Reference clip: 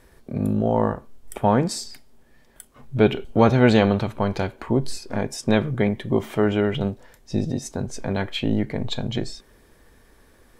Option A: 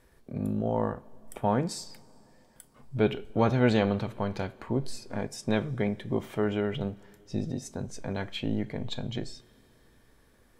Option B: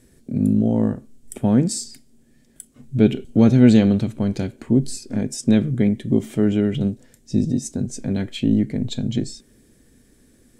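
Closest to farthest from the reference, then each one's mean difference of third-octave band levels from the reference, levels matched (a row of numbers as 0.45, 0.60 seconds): A, B; 1.0, 5.0 decibels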